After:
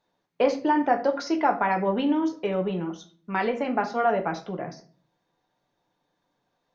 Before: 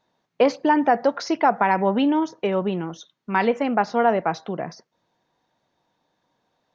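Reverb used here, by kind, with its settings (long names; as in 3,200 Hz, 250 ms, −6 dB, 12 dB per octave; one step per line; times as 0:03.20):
rectangular room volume 31 cubic metres, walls mixed, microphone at 0.33 metres
level −5.5 dB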